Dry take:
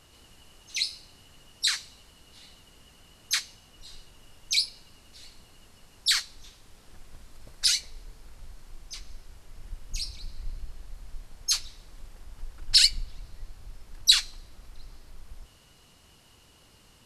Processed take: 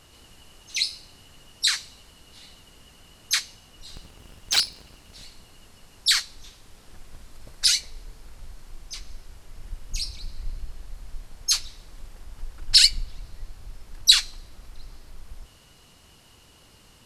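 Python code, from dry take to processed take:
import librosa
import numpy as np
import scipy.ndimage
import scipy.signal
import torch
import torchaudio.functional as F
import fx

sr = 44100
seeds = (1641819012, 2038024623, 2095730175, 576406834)

y = fx.cycle_switch(x, sr, every=3, mode='inverted', at=(3.87, 5.24))
y = y * 10.0 ** (3.5 / 20.0)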